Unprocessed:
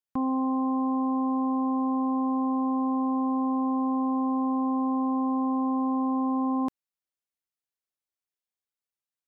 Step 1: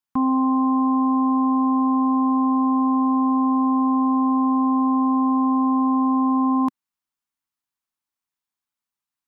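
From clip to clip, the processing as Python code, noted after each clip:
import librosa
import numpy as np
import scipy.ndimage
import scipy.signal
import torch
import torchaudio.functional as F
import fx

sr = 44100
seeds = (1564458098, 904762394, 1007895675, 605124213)

y = fx.graphic_eq(x, sr, hz=(250, 500, 1000), db=(6, -10, 8))
y = y * 10.0 ** (3.0 / 20.0)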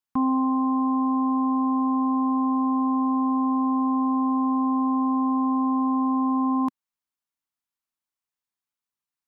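y = fx.rider(x, sr, range_db=10, speed_s=0.5)
y = y * 10.0 ** (-3.5 / 20.0)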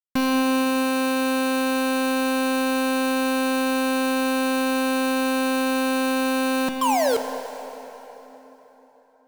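y = fx.spec_paint(x, sr, seeds[0], shape='fall', start_s=6.81, length_s=0.36, low_hz=430.0, high_hz=1100.0, level_db=-32.0)
y = fx.quant_companded(y, sr, bits=2)
y = fx.rev_plate(y, sr, seeds[1], rt60_s=3.9, hf_ratio=0.75, predelay_ms=0, drr_db=6.5)
y = y * 10.0 ** (5.0 / 20.0)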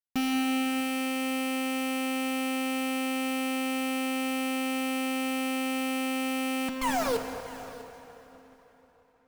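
y = fx.lower_of_two(x, sr, delay_ms=4.2)
y = y + 10.0 ** (-19.0 / 20.0) * np.pad(y, (int(647 * sr / 1000.0), 0))[:len(y)]
y = y * 10.0 ** (-6.0 / 20.0)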